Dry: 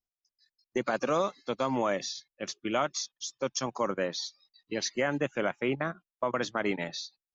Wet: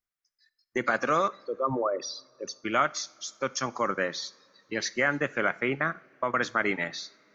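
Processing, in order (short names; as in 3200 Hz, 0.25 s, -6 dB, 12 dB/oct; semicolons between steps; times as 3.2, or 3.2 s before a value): 1.28–2.64 formant sharpening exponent 3; band shelf 1600 Hz +8 dB 1.1 oct; two-slope reverb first 0.42 s, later 3.8 s, from -22 dB, DRR 16 dB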